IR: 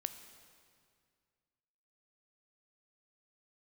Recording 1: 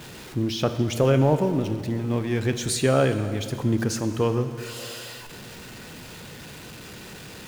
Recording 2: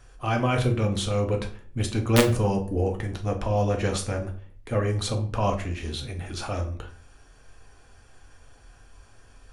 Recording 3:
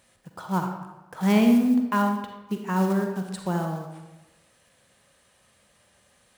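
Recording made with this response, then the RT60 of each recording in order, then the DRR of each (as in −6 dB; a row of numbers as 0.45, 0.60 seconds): 1; 2.1, 0.45, 1.1 seconds; 9.0, 2.0, 3.5 decibels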